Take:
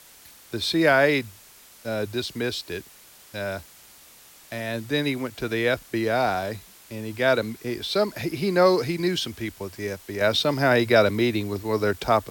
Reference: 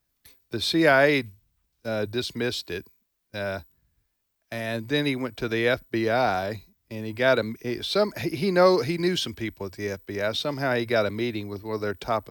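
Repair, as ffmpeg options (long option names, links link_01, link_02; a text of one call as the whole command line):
ffmpeg -i in.wav -af "afwtdn=0.0035,asetnsamples=nb_out_samples=441:pad=0,asendcmd='10.21 volume volume -5.5dB',volume=0dB" out.wav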